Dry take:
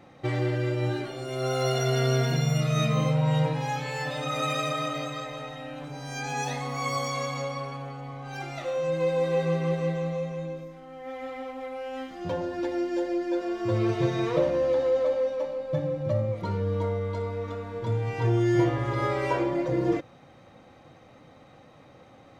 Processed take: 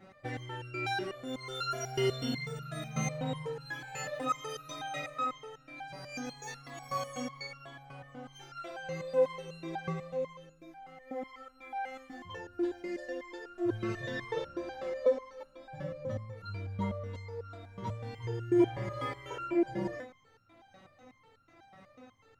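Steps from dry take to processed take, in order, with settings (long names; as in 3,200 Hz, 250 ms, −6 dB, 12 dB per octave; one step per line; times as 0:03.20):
graphic EQ with 15 bands 100 Hz +9 dB, 250 Hz +4 dB, 1,600 Hz +5 dB
flutter between parallel walls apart 10.2 metres, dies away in 0.26 s
step-sequenced resonator 8.1 Hz 190–1,400 Hz
level +8.5 dB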